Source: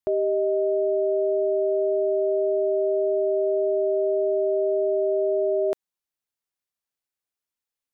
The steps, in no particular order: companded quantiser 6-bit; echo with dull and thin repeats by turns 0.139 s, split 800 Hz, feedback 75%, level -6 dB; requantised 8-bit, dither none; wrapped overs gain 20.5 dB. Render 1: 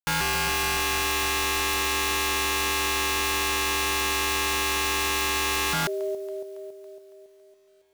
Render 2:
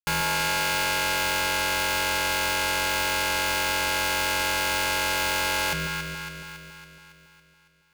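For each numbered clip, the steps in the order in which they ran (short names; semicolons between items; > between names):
requantised > echo with dull and thin repeats by turns > wrapped overs > companded quantiser; companded quantiser > wrapped overs > requantised > echo with dull and thin repeats by turns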